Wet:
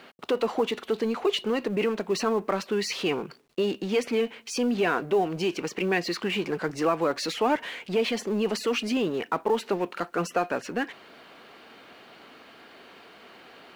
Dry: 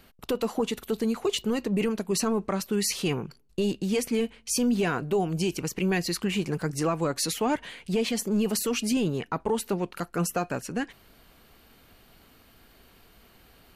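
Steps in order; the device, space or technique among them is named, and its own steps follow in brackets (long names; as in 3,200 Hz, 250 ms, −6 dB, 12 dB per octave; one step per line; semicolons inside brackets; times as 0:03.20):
phone line with mismatched companding (band-pass filter 320–3,400 Hz; mu-law and A-law mismatch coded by mu)
level +3 dB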